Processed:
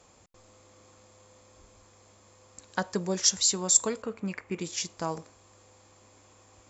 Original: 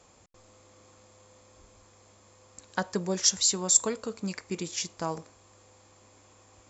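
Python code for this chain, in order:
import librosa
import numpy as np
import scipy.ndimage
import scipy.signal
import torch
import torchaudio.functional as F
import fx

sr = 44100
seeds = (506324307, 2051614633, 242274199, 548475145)

y = fx.high_shelf_res(x, sr, hz=3300.0, db=-10.5, q=1.5, at=(4.02, 4.61))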